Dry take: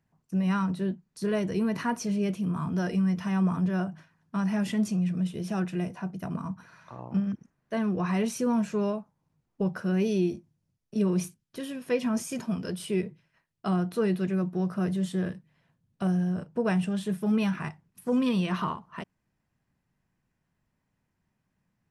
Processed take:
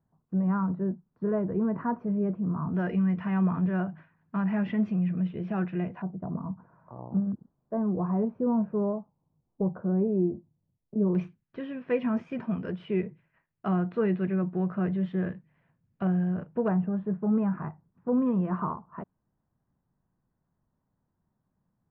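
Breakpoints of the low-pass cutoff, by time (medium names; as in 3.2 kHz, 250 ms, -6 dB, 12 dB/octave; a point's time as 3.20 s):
low-pass 24 dB/octave
1.3 kHz
from 2.75 s 2.4 kHz
from 6.02 s 1 kHz
from 11.15 s 2.4 kHz
from 16.68 s 1.3 kHz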